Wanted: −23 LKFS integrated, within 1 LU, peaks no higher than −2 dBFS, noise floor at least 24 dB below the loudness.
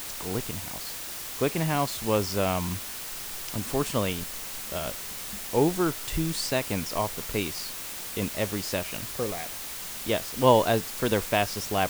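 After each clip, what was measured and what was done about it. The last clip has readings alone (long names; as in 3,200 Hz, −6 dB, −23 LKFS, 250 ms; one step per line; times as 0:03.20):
background noise floor −37 dBFS; target noise floor −53 dBFS; integrated loudness −28.5 LKFS; sample peak −6.5 dBFS; target loudness −23.0 LKFS
→ broadband denoise 16 dB, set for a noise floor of −37 dBFS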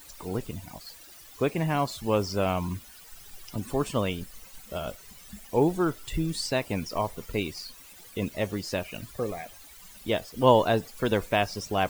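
background noise floor −50 dBFS; target noise floor −53 dBFS
→ broadband denoise 6 dB, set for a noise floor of −50 dBFS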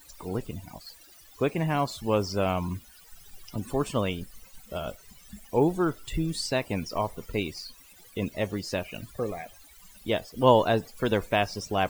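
background noise floor −53 dBFS; integrated loudness −28.5 LKFS; sample peak −6.5 dBFS; target loudness −23.0 LKFS
→ level +5.5 dB
brickwall limiter −2 dBFS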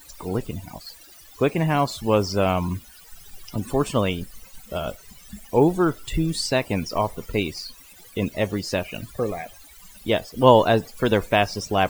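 integrated loudness −23.0 LKFS; sample peak −2.0 dBFS; background noise floor −48 dBFS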